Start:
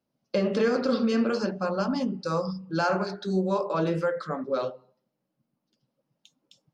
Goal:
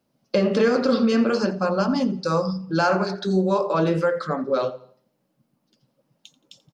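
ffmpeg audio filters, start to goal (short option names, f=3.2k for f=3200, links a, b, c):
-filter_complex "[0:a]asplit=2[a][b];[b]acompressor=threshold=-39dB:ratio=6,volume=-1.5dB[c];[a][c]amix=inputs=2:normalize=0,aecho=1:1:86|172|258:0.106|0.036|0.0122,volume=4dB"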